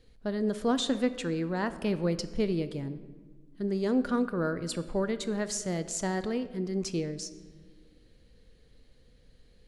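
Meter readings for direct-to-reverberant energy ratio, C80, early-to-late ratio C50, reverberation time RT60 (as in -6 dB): 11.5 dB, 15.0 dB, 13.0 dB, 1.5 s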